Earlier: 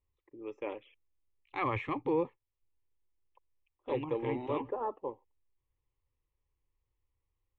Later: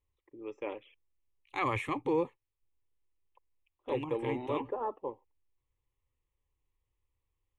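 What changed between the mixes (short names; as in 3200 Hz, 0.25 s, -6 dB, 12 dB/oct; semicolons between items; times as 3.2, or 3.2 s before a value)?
second voice: remove air absorption 150 m; master: remove air absorption 74 m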